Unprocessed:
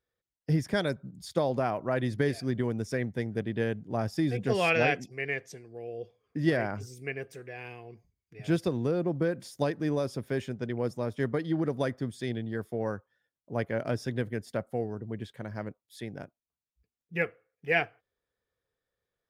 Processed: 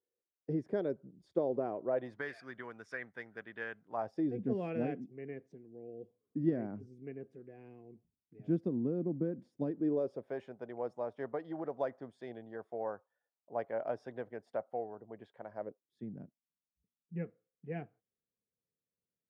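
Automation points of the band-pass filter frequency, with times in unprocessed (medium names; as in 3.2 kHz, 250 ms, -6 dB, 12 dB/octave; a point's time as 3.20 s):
band-pass filter, Q 2.1
1.83 s 390 Hz
2.27 s 1.4 kHz
3.84 s 1.4 kHz
4.41 s 250 Hz
9.66 s 250 Hz
10.37 s 740 Hz
15.52 s 740 Hz
16.04 s 200 Hz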